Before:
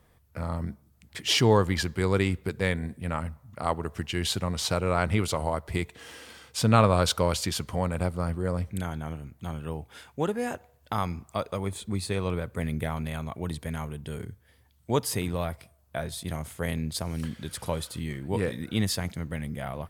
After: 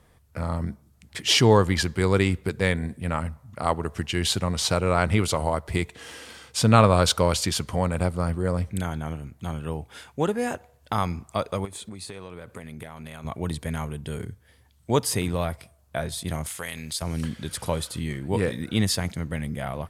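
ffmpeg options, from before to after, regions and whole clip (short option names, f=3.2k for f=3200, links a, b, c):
-filter_complex "[0:a]asettb=1/sr,asplit=3[a][b][c];[a]atrim=end=11.654[d];[b]atrim=start=11.65:end=13.25,asetpts=PTS-STARTPTS,afade=t=in:d=0.004:c=qsin,afade=t=out:st=1.596:d=0.004:c=qsin,lowshelf=f=150:g=-10,acompressor=threshold=-37dB:ratio=16:attack=3.2:release=140:knee=1:detection=peak[e];[c]atrim=start=13.246[f];[d][e]acrossfade=d=0.004:c1=hsin:c2=qsin[g];[g][f]acrossfade=d=0.004:c1=qsin:c2=hsin,asettb=1/sr,asplit=3[h][i][j];[h]atrim=end=16.464[k];[i]atrim=start=16.46:end=17.02,asetpts=PTS-STARTPTS,afade=t=in:d=0.004:c=qsin,afade=t=out:st=0.556:d=0.004:c=qsin,tiltshelf=f=780:g=-9,acompressor=threshold=-34dB:ratio=3:attack=3.2:release=140:knee=1:detection=peak[l];[j]atrim=start=17.016[m];[k][l]acrossfade=d=0.004:c1=hsin:c2=qsin[n];[n][m]acrossfade=d=0.004:c1=qsin:c2=hsin,lowpass=11k,highshelf=f=8.2k:g=4.5,volume=3.5dB"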